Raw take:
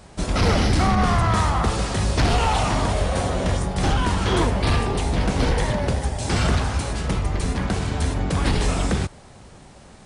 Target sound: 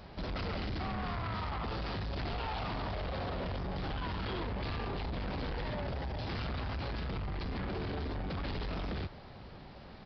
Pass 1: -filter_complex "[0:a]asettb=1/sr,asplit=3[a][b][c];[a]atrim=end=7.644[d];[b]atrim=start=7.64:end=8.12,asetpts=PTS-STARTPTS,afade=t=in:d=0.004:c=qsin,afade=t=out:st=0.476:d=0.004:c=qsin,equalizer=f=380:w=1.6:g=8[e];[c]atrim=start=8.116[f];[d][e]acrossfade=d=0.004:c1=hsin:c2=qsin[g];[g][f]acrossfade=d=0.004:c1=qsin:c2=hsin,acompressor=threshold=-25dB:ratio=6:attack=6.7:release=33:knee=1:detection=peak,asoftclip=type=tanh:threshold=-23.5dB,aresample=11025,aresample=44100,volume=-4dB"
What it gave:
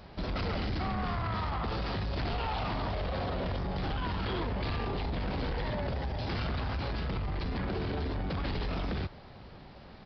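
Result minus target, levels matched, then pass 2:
soft clip: distortion -6 dB
-filter_complex "[0:a]asettb=1/sr,asplit=3[a][b][c];[a]atrim=end=7.644[d];[b]atrim=start=7.64:end=8.12,asetpts=PTS-STARTPTS,afade=t=in:d=0.004:c=qsin,afade=t=out:st=0.476:d=0.004:c=qsin,equalizer=f=380:w=1.6:g=8[e];[c]atrim=start=8.116[f];[d][e]acrossfade=d=0.004:c1=hsin:c2=qsin[g];[g][f]acrossfade=d=0.004:c1=qsin:c2=hsin,acompressor=threshold=-25dB:ratio=6:attack=6.7:release=33:knee=1:detection=peak,asoftclip=type=tanh:threshold=-30dB,aresample=11025,aresample=44100,volume=-4dB"

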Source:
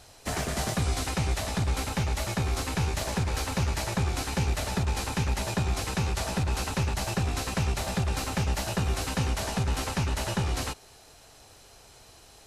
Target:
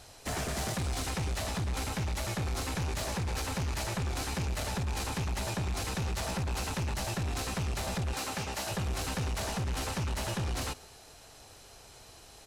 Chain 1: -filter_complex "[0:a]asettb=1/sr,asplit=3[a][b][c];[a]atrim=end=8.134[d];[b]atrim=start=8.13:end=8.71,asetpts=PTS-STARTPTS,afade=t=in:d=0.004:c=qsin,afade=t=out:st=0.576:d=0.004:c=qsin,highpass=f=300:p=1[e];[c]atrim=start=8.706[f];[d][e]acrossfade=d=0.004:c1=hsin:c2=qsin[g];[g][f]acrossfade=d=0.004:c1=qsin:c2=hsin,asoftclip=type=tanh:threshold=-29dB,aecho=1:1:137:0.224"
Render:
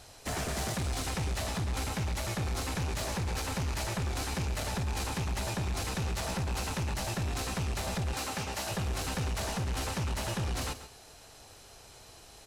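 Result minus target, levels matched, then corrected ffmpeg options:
echo-to-direct +10 dB
-filter_complex "[0:a]asettb=1/sr,asplit=3[a][b][c];[a]atrim=end=8.134[d];[b]atrim=start=8.13:end=8.71,asetpts=PTS-STARTPTS,afade=t=in:d=0.004:c=qsin,afade=t=out:st=0.576:d=0.004:c=qsin,highpass=f=300:p=1[e];[c]atrim=start=8.706[f];[d][e]acrossfade=d=0.004:c1=hsin:c2=qsin[g];[g][f]acrossfade=d=0.004:c1=qsin:c2=hsin,asoftclip=type=tanh:threshold=-29dB,aecho=1:1:137:0.0708"

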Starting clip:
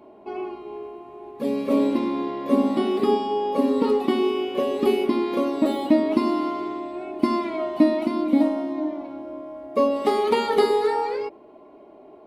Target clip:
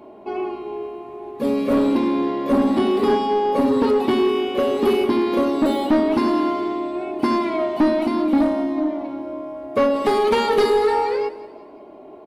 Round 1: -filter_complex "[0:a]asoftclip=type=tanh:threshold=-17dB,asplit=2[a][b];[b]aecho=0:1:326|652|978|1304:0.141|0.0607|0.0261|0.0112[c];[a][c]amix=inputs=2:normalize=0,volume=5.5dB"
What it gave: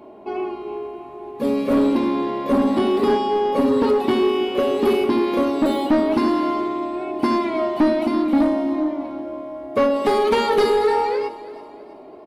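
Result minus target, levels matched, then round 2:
echo 0.146 s late
-filter_complex "[0:a]asoftclip=type=tanh:threshold=-17dB,asplit=2[a][b];[b]aecho=0:1:180|360|540|720:0.141|0.0607|0.0261|0.0112[c];[a][c]amix=inputs=2:normalize=0,volume=5.5dB"

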